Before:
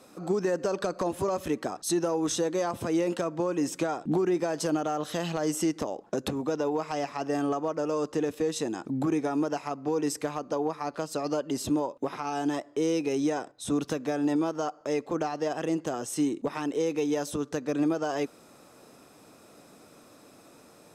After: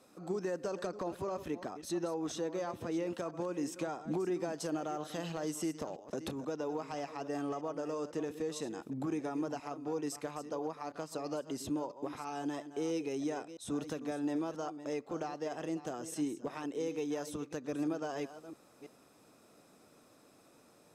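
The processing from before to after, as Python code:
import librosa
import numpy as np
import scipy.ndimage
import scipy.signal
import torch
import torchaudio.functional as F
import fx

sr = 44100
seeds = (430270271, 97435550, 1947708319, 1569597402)

y = fx.reverse_delay(x, sr, ms=331, wet_db=-12.0)
y = fx.peak_eq(y, sr, hz=9500.0, db=-7.5, octaves=1.2, at=(0.87, 3.18))
y = y * 10.0 ** (-9.0 / 20.0)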